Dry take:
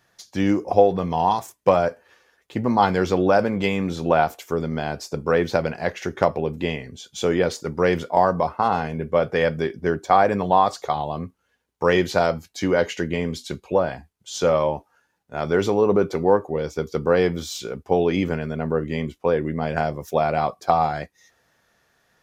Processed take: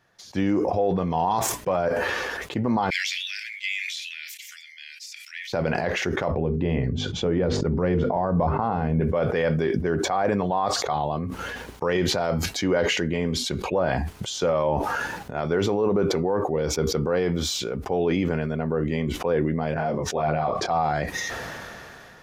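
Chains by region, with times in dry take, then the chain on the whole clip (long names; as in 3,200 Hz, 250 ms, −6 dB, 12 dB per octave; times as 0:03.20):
0:02.90–0:05.53: de-essing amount 25% + Butterworth high-pass 1,900 Hz 72 dB per octave
0:06.31–0:09.01: low-pass filter 6,200 Hz + spectral tilt −3 dB per octave + mains-hum notches 50/100/150/200/250/300/350/400/450 Hz
0:19.74–0:20.69: Bessel low-pass filter 6,700 Hz + high-shelf EQ 4,800 Hz −7 dB + micro pitch shift up and down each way 19 cents
whole clip: high-shelf EQ 5,000 Hz −9 dB; brickwall limiter −14 dBFS; level that may fall only so fast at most 20 dB per second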